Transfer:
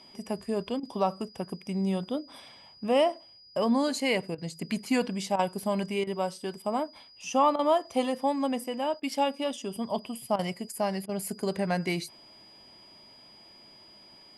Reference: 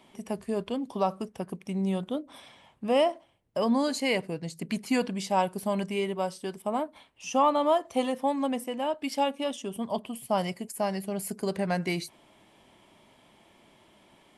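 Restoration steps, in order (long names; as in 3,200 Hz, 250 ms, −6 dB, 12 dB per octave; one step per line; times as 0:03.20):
notch filter 4,900 Hz, Q 30
repair the gap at 0:00.80/0:04.35/0:05.36/0:06.04/0:07.56/0:09.00/0:10.36/0:11.06, 29 ms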